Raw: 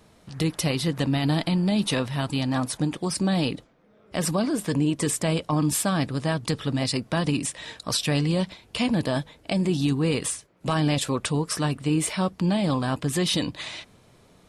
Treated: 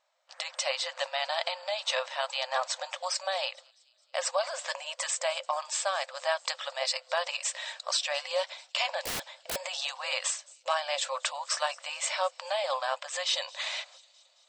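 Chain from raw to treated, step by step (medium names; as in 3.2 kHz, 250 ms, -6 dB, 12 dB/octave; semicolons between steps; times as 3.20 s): FFT band-pass 510–8300 Hz; gate -55 dBFS, range -14 dB; on a send: feedback echo behind a high-pass 219 ms, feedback 61%, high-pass 4.8 kHz, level -20.5 dB; 9.05–9.56 s: on the sum: integer overflow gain 30.5 dB; gain riding within 3 dB 0.5 s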